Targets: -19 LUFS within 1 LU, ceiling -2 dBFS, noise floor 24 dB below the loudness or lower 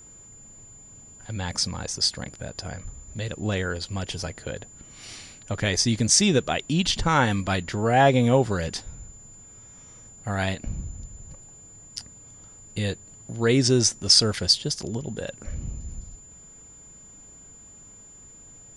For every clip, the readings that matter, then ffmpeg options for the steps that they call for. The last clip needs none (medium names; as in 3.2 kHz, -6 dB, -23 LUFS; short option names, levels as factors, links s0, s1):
steady tone 7.1 kHz; tone level -46 dBFS; loudness -23.5 LUFS; peak level -4.0 dBFS; loudness target -19.0 LUFS
-> -af "bandreject=f=7100:w=30"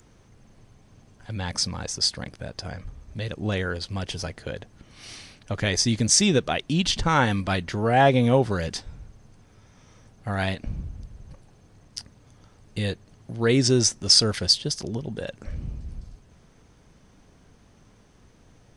steady tone not found; loudness -23.5 LUFS; peak level -4.0 dBFS; loudness target -19.0 LUFS
-> -af "volume=1.68,alimiter=limit=0.794:level=0:latency=1"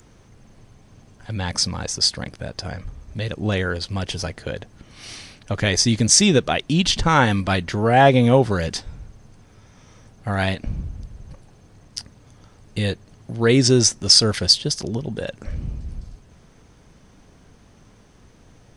loudness -19.0 LUFS; peak level -2.0 dBFS; noise floor -52 dBFS